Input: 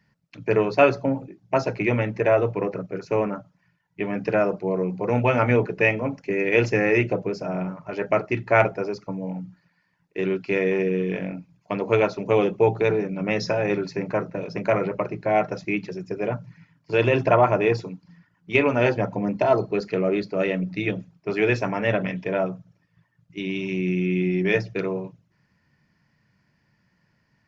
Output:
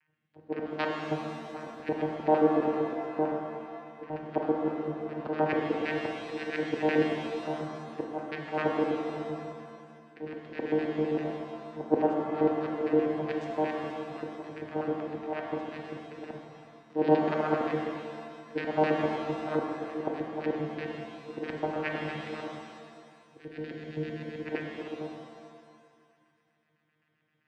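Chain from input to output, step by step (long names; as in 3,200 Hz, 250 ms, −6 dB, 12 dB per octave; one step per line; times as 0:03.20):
auto-filter band-pass square 7.7 Hz 530–1,800 Hz
channel vocoder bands 8, saw 154 Hz
volume swells 133 ms
reverb with rising layers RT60 2 s, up +7 semitones, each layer −8 dB, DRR 1.5 dB
level +2 dB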